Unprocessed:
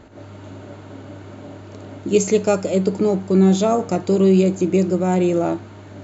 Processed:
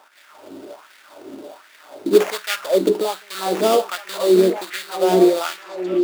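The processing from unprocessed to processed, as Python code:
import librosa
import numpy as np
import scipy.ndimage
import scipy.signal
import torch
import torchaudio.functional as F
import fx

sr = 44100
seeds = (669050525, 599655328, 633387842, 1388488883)

p1 = fx.dynamic_eq(x, sr, hz=1300.0, q=0.88, threshold_db=-35.0, ratio=4.0, max_db=6)
p2 = fx.sample_hold(p1, sr, seeds[0], rate_hz=4100.0, jitter_pct=20)
p3 = fx.filter_lfo_highpass(p2, sr, shape='sine', hz=1.3, low_hz=300.0, high_hz=1900.0, q=2.9)
p4 = p3 + fx.echo_stepped(p3, sr, ms=743, hz=280.0, octaves=1.4, feedback_pct=70, wet_db=-3.0, dry=0)
y = F.gain(torch.from_numpy(p4), -3.5).numpy()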